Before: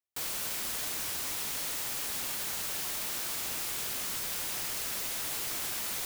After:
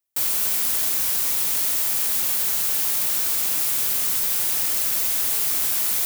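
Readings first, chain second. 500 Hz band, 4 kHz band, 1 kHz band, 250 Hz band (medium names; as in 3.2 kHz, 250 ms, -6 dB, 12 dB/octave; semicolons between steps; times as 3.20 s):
+5.0 dB, +7.0 dB, +5.0 dB, +5.0 dB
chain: treble shelf 8.1 kHz +11 dB; trim +5 dB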